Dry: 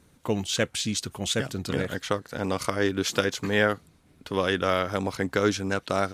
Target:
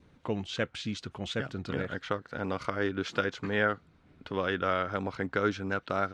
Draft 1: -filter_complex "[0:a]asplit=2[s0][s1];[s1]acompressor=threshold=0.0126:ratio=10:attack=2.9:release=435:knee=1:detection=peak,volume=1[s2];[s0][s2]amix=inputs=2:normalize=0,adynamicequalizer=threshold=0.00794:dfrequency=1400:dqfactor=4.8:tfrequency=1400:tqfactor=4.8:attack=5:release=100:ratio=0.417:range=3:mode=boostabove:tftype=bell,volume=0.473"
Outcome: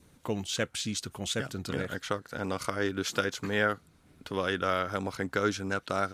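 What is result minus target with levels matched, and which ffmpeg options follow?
4 kHz band +3.5 dB
-filter_complex "[0:a]asplit=2[s0][s1];[s1]acompressor=threshold=0.0126:ratio=10:attack=2.9:release=435:knee=1:detection=peak,volume=1[s2];[s0][s2]amix=inputs=2:normalize=0,adynamicequalizer=threshold=0.00794:dfrequency=1400:dqfactor=4.8:tfrequency=1400:tqfactor=4.8:attack=5:release=100:ratio=0.417:range=3:mode=boostabove:tftype=bell,lowpass=3300,volume=0.473"

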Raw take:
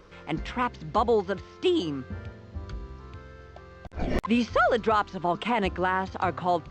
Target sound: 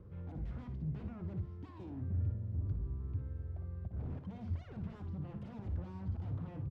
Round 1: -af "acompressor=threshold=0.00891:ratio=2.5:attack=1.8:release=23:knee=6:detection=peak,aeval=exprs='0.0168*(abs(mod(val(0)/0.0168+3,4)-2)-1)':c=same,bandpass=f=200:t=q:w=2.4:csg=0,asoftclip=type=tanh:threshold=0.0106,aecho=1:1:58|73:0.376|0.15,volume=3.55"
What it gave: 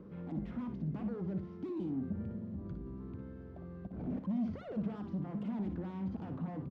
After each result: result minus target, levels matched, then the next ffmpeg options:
250 Hz band +7.5 dB; compression: peak gain reduction +4 dB
-af "acompressor=threshold=0.00891:ratio=2.5:attack=1.8:release=23:knee=6:detection=peak,aeval=exprs='0.0168*(abs(mod(val(0)/0.0168+3,4)-2)-1)':c=same,bandpass=f=100:t=q:w=2.4:csg=0,asoftclip=type=tanh:threshold=0.0106,aecho=1:1:58|73:0.376|0.15,volume=3.55"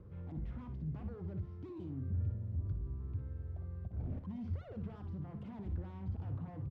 compression: peak gain reduction +4 dB
-af "acompressor=threshold=0.0188:ratio=2.5:attack=1.8:release=23:knee=6:detection=peak,aeval=exprs='0.0168*(abs(mod(val(0)/0.0168+3,4)-2)-1)':c=same,bandpass=f=100:t=q:w=2.4:csg=0,asoftclip=type=tanh:threshold=0.0106,aecho=1:1:58|73:0.376|0.15,volume=3.55"

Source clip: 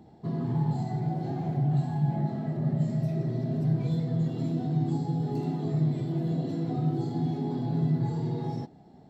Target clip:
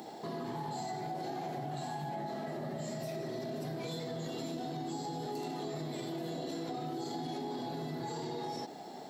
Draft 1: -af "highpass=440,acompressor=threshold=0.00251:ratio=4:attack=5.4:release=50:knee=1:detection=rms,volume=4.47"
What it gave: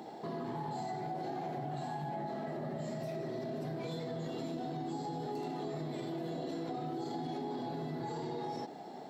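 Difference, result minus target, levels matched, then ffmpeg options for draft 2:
8 kHz band -8.0 dB
-af "highpass=440,highshelf=f=3900:g=11,acompressor=threshold=0.00251:ratio=4:attack=5.4:release=50:knee=1:detection=rms,volume=4.47"

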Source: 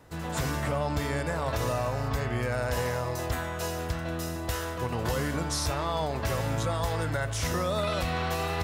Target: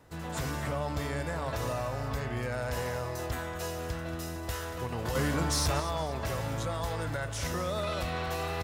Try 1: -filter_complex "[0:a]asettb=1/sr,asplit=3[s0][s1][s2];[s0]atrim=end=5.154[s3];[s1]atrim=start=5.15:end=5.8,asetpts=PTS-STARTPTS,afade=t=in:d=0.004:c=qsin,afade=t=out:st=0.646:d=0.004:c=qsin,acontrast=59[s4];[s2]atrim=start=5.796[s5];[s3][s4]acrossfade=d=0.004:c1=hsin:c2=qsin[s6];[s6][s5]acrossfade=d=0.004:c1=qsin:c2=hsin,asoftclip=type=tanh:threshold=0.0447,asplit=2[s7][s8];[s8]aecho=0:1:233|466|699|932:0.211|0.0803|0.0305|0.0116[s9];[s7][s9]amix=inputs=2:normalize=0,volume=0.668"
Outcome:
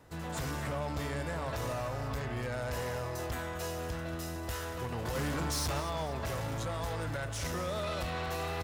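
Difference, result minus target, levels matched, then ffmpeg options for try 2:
saturation: distortion +10 dB
-filter_complex "[0:a]asettb=1/sr,asplit=3[s0][s1][s2];[s0]atrim=end=5.154[s3];[s1]atrim=start=5.15:end=5.8,asetpts=PTS-STARTPTS,afade=t=in:d=0.004:c=qsin,afade=t=out:st=0.646:d=0.004:c=qsin,acontrast=59[s4];[s2]atrim=start=5.796[s5];[s3][s4]acrossfade=d=0.004:c1=hsin:c2=qsin[s6];[s6][s5]acrossfade=d=0.004:c1=qsin:c2=hsin,asoftclip=type=tanh:threshold=0.126,asplit=2[s7][s8];[s8]aecho=0:1:233|466|699|932:0.211|0.0803|0.0305|0.0116[s9];[s7][s9]amix=inputs=2:normalize=0,volume=0.668"

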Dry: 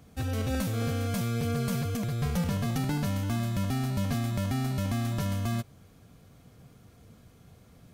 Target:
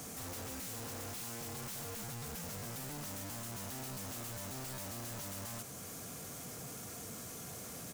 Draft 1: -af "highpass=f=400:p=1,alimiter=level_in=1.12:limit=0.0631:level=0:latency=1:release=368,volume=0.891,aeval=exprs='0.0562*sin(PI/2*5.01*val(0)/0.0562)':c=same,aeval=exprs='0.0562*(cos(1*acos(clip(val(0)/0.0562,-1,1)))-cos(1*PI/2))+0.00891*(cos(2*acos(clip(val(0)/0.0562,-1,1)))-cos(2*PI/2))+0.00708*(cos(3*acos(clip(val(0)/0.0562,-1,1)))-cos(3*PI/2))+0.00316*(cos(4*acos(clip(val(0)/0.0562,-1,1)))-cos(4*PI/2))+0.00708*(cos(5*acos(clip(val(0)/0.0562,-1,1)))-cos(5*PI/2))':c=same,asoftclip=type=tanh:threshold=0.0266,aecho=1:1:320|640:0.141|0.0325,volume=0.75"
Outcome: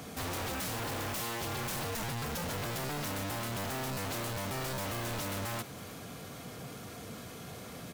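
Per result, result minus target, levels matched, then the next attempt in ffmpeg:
8 kHz band -4.5 dB; saturation: distortion -4 dB
-af "highpass=f=400:p=1,highshelf=f=5000:t=q:w=1.5:g=8.5,alimiter=level_in=1.12:limit=0.0631:level=0:latency=1:release=368,volume=0.891,aeval=exprs='0.0562*sin(PI/2*5.01*val(0)/0.0562)':c=same,aeval=exprs='0.0562*(cos(1*acos(clip(val(0)/0.0562,-1,1)))-cos(1*PI/2))+0.00891*(cos(2*acos(clip(val(0)/0.0562,-1,1)))-cos(2*PI/2))+0.00708*(cos(3*acos(clip(val(0)/0.0562,-1,1)))-cos(3*PI/2))+0.00316*(cos(4*acos(clip(val(0)/0.0562,-1,1)))-cos(4*PI/2))+0.00708*(cos(5*acos(clip(val(0)/0.0562,-1,1)))-cos(5*PI/2))':c=same,asoftclip=type=tanh:threshold=0.0266,aecho=1:1:320|640:0.141|0.0325,volume=0.75"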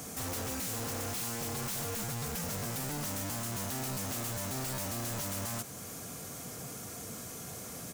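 saturation: distortion -4 dB
-af "highpass=f=400:p=1,highshelf=f=5000:t=q:w=1.5:g=8.5,alimiter=level_in=1.12:limit=0.0631:level=0:latency=1:release=368,volume=0.891,aeval=exprs='0.0562*sin(PI/2*5.01*val(0)/0.0562)':c=same,aeval=exprs='0.0562*(cos(1*acos(clip(val(0)/0.0562,-1,1)))-cos(1*PI/2))+0.00891*(cos(2*acos(clip(val(0)/0.0562,-1,1)))-cos(2*PI/2))+0.00708*(cos(3*acos(clip(val(0)/0.0562,-1,1)))-cos(3*PI/2))+0.00316*(cos(4*acos(clip(val(0)/0.0562,-1,1)))-cos(4*PI/2))+0.00708*(cos(5*acos(clip(val(0)/0.0562,-1,1)))-cos(5*PI/2))':c=same,asoftclip=type=tanh:threshold=0.00944,aecho=1:1:320|640:0.141|0.0325,volume=0.75"

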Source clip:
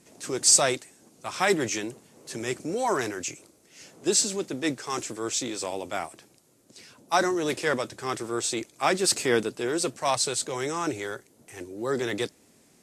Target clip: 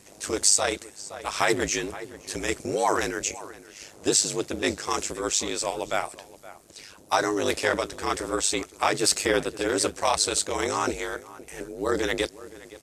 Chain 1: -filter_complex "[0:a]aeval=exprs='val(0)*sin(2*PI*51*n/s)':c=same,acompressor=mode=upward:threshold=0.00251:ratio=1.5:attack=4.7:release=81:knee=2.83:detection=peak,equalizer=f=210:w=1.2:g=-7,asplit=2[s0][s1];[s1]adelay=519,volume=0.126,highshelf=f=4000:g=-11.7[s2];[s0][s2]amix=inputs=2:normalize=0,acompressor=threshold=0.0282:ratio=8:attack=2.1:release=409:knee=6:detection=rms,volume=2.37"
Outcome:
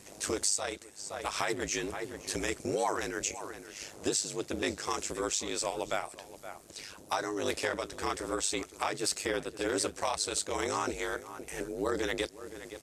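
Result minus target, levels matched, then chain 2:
compression: peak gain reduction +10.5 dB
-filter_complex "[0:a]aeval=exprs='val(0)*sin(2*PI*51*n/s)':c=same,acompressor=mode=upward:threshold=0.00251:ratio=1.5:attack=4.7:release=81:knee=2.83:detection=peak,equalizer=f=210:w=1.2:g=-7,asplit=2[s0][s1];[s1]adelay=519,volume=0.126,highshelf=f=4000:g=-11.7[s2];[s0][s2]amix=inputs=2:normalize=0,acompressor=threshold=0.112:ratio=8:attack=2.1:release=409:knee=6:detection=rms,volume=2.37"

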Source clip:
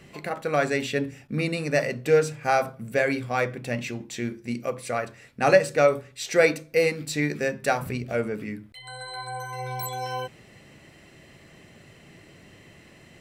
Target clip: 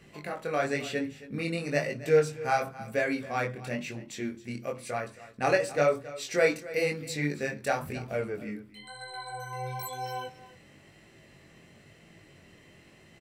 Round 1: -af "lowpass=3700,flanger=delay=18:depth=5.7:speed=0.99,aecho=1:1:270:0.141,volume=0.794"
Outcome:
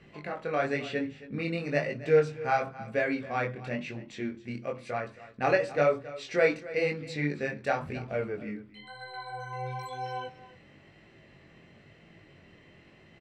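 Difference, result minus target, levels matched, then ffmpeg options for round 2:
4 kHz band -3.0 dB
-af "flanger=delay=18:depth=5.7:speed=0.99,aecho=1:1:270:0.141,volume=0.794"

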